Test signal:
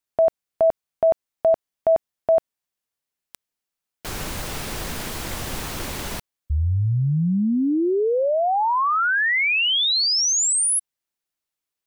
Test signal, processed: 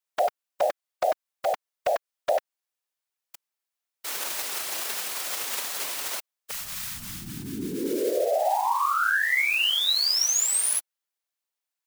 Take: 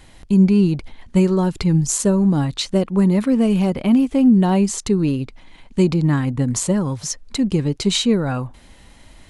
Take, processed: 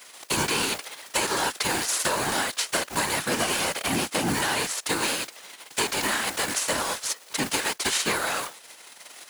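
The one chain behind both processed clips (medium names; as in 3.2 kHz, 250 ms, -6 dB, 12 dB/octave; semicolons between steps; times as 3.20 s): formants flattened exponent 0.3; high-pass 470 Hz 12 dB/octave; dynamic bell 1.6 kHz, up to +4 dB, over -37 dBFS, Q 3.3; compression, threshold -19 dBFS; overload inside the chain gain 12 dB; whisper effect; trim -2 dB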